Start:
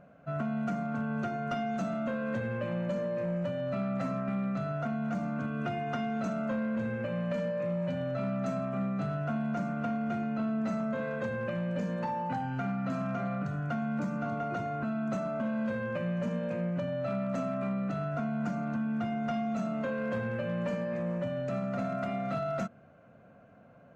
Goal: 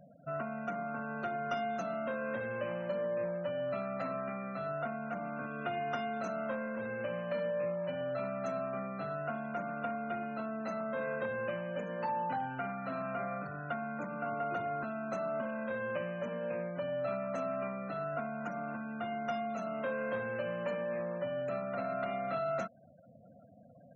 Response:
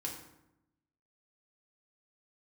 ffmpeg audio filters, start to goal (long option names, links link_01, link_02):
-filter_complex "[0:a]afftfilt=real='re*gte(hypot(re,im),0.00398)':imag='im*gte(hypot(re,im),0.00398)':win_size=1024:overlap=0.75,acrossover=split=360|3000[link_01][link_02][link_03];[link_01]acompressor=threshold=-48dB:ratio=4[link_04];[link_04][link_02][link_03]amix=inputs=3:normalize=0"